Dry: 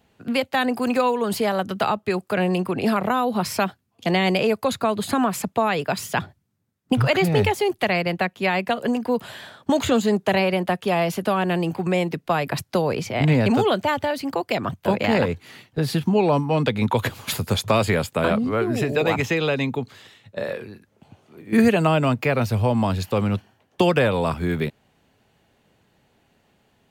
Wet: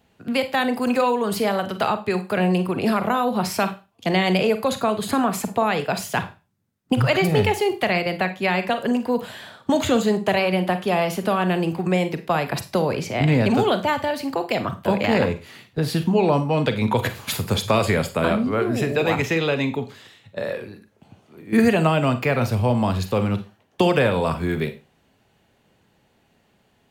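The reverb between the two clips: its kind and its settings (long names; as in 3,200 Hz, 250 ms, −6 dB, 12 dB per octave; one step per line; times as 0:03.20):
four-comb reverb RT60 0.3 s, combs from 33 ms, DRR 9.5 dB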